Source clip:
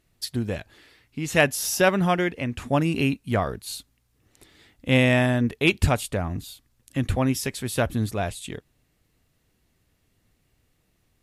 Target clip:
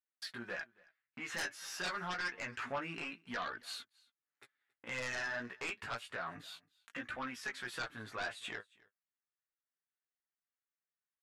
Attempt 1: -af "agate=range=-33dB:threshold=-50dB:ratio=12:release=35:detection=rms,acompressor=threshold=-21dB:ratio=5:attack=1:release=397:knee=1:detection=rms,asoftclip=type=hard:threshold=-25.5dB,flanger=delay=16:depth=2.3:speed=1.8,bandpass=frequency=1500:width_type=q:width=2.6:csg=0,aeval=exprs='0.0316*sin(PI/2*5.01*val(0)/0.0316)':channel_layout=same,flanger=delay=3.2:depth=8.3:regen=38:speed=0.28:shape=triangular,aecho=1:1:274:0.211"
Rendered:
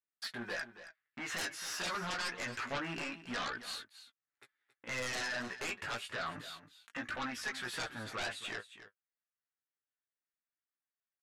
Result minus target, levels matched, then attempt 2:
echo-to-direct +11.5 dB; downward compressor: peak gain reduction −5.5 dB
-af "agate=range=-33dB:threshold=-50dB:ratio=12:release=35:detection=rms,acompressor=threshold=-28dB:ratio=5:attack=1:release=397:knee=1:detection=rms,asoftclip=type=hard:threshold=-25.5dB,flanger=delay=16:depth=2.3:speed=1.8,bandpass=frequency=1500:width_type=q:width=2.6:csg=0,aeval=exprs='0.0316*sin(PI/2*5.01*val(0)/0.0316)':channel_layout=same,flanger=delay=3.2:depth=8.3:regen=38:speed=0.28:shape=triangular,aecho=1:1:274:0.0562"

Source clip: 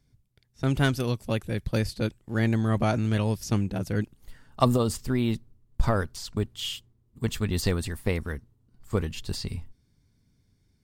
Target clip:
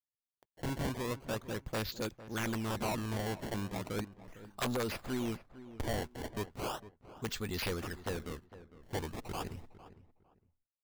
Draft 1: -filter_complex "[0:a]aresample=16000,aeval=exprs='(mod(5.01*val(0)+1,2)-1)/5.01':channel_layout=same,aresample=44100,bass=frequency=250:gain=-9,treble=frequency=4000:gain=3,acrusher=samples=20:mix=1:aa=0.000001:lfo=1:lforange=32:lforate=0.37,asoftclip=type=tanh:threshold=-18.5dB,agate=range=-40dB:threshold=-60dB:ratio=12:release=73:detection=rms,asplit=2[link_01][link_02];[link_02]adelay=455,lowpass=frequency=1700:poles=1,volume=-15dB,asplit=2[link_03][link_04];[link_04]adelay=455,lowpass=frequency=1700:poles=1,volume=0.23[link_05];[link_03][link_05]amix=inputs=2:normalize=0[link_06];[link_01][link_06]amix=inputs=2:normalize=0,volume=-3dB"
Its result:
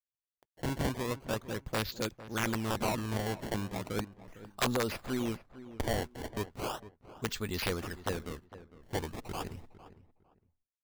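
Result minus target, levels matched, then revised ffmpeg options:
soft clipping: distortion −5 dB
-filter_complex "[0:a]aresample=16000,aeval=exprs='(mod(5.01*val(0)+1,2)-1)/5.01':channel_layout=same,aresample=44100,bass=frequency=250:gain=-9,treble=frequency=4000:gain=3,acrusher=samples=20:mix=1:aa=0.000001:lfo=1:lforange=32:lforate=0.37,asoftclip=type=tanh:threshold=-26.5dB,agate=range=-40dB:threshold=-60dB:ratio=12:release=73:detection=rms,asplit=2[link_01][link_02];[link_02]adelay=455,lowpass=frequency=1700:poles=1,volume=-15dB,asplit=2[link_03][link_04];[link_04]adelay=455,lowpass=frequency=1700:poles=1,volume=0.23[link_05];[link_03][link_05]amix=inputs=2:normalize=0[link_06];[link_01][link_06]amix=inputs=2:normalize=0,volume=-3dB"

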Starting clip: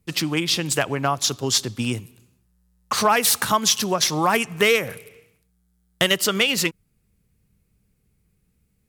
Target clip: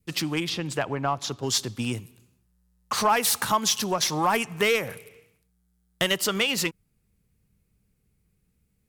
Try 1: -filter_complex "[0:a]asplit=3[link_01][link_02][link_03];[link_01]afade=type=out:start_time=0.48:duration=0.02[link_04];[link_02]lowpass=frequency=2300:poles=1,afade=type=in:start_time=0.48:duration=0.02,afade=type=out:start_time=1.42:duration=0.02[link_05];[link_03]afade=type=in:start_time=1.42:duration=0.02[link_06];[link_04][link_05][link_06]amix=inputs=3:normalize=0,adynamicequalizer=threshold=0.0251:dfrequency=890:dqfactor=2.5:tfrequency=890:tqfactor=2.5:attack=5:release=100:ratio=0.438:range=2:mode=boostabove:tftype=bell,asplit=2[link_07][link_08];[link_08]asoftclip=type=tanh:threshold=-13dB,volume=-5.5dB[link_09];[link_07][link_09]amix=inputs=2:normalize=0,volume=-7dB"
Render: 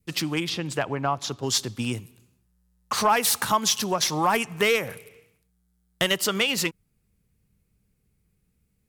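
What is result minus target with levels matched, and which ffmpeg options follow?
soft clipping: distortion −6 dB
-filter_complex "[0:a]asplit=3[link_01][link_02][link_03];[link_01]afade=type=out:start_time=0.48:duration=0.02[link_04];[link_02]lowpass=frequency=2300:poles=1,afade=type=in:start_time=0.48:duration=0.02,afade=type=out:start_time=1.42:duration=0.02[link_05];[link_03]afade=type=in:start_time=1.42:duration=0.02[link_06];[link_04][link_05][link_06]amix=inputs=3:normalize=0,adynamicequalizer=threshold=0.0251:dfrequency=890:dqfactor=2.5:tfrequency=890:tqfactor=2.5:attack=5:release=100:ratio=0.438:range=2:mode=boostabove:tftype=bell,asplit=2[link_07][link_08];[link_08]asoftclip=type=tanh:threshold=-19.5dB,volume=-5.5dB[link_09];[link_07][link_09]amix=inputs=2:normalize=0,volume=-7dB"

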